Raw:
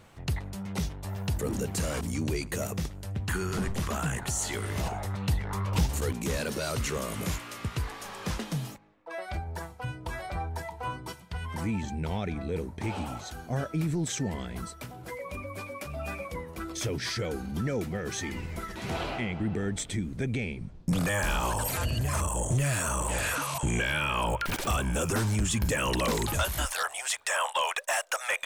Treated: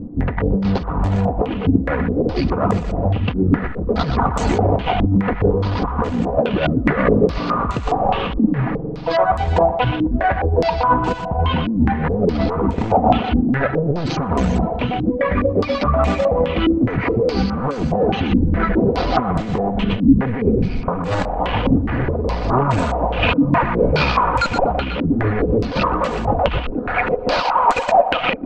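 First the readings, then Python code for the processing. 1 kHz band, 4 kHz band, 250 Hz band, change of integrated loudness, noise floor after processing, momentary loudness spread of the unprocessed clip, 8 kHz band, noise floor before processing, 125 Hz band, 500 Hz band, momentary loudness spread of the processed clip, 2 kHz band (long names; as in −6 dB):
+16.0 dB, +7.0 dB, +16.0 dB, +13.0 dB, −25 dBFS, 10 LU, below −10 dB, −46 dBFS, +11.0 dB, +16.5 dB, 5 LU, +8.0 dB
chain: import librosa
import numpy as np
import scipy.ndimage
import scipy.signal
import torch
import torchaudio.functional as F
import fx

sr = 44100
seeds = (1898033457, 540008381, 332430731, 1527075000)

p1 = scipy.signal.medfilt(x, 25)
p2 = fx.rev_spring(p1, sr, rt60_s=3.0, pass_ms=(45,), chirp_ms=40, drr_db=11.5)
p3 = fx.fold_sine(p2, sr, drive_db=13, ceiling_db=-16.0)
p4 = p2 + F.gain(torch.from_numpy(p3), -3.0).numpy()
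p5 = fx.dereverb_blind(p4, sr, rt60_s=0.51)
p6 = fx.air_absorb(p5, sr, metres=190.0)
p7 = p6 + 0.39 * np.pad(p6, (int(4.1 * sr / 1000.0), 0))[:len(p6)]
p8 = fx.over_compress(p7, sr, threshold_db=-24.0, ratio=-0.5)
p9 = p8 + fx.echo_thinned(p8, sr, ms=122, feedback_pct=82, hz=830.0, wet_db=-7.0, dry=0)
p10 = fx.filter_held_lowpass(p9, sr, hz=4.8, low_hz=280.0, high_hz=7800.0)
y = F.gain(torch.from_numpy(p10), 5.5).numpy()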